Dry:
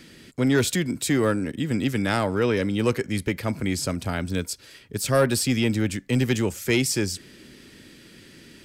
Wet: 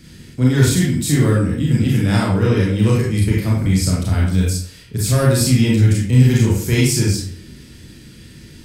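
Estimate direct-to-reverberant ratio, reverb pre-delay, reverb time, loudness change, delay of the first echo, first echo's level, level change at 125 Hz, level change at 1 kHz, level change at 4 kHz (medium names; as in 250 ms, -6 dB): -5.0 dB, 27 ms, 0.55 s, +8.0 dB, no echo, no echo, +14.0 dB, +2.0 dB, +4.5 dB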